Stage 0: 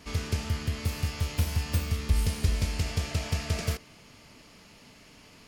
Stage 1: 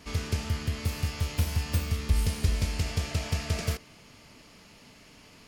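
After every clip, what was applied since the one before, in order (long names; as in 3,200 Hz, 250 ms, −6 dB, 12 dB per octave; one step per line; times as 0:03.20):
no processing that can be heard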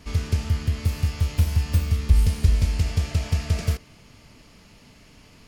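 low-shelf EQ 140 Hz +10 dB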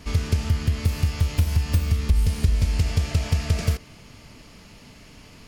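downward compressor 3 to 1, threshold −21 dBFS, peak gain reduction 8.5 dB
level +4 dB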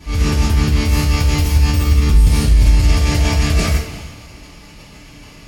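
transient designer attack −6 dB, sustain +8 dB
coupled-rooms reverb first 0.32 s, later 1.7 s, DRR −9 dB
level −2.5 dB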